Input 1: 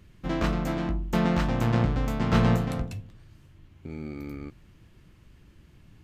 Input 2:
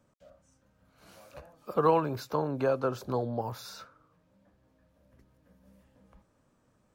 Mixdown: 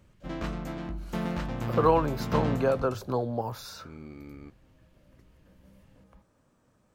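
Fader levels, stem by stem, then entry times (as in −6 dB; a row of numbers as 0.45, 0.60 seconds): −7.5, +2.0 decibels; 0.00, 0.00 seconds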